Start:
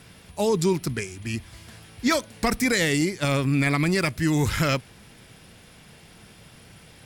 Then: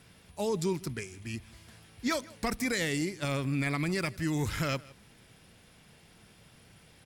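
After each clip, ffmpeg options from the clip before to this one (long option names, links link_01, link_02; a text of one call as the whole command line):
ffmpeg -i in.wav -af "aecho=1:1:159:0.0794,volume=-8.5dB" out.wav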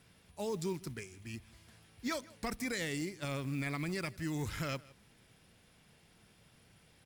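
ffmpeg -i in.wav -af "acrusher=bits=6:mode=log:mix=0:aa=0.000001,volume=-6.5dB" out.wav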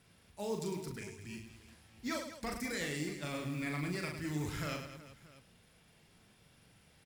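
ffmpeg -i in.wav -af "aecho=1:1:40|104|206.4|370.2|632.4:0.631|0.398|0.251|0.158|0.1,volume=-2.5dB" out.wav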